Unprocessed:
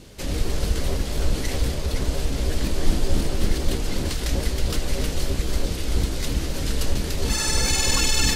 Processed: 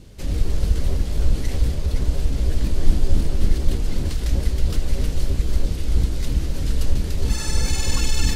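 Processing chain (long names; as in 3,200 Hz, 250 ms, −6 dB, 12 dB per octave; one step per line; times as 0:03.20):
low-shelf EQ 210 Hz +11 dB
level −6 dB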